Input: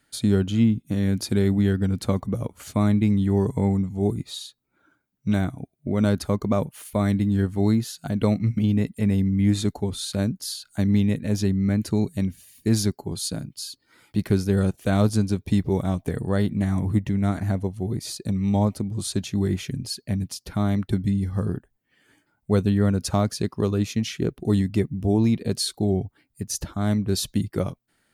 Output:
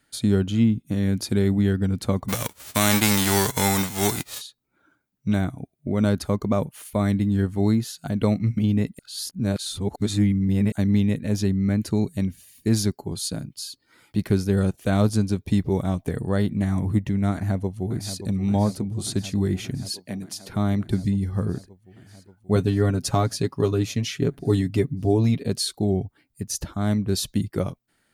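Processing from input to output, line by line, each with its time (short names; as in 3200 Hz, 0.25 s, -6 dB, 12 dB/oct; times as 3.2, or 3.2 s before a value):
2.28–4.4 spectral whitening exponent 0.3
8.99–10.72 reverse
17.32–18.22 echo throw 0.58 s, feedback 80%, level -11 dB
19.89–20.5 HPF 230 Hz
22.55–25.46 comb 7.2 ms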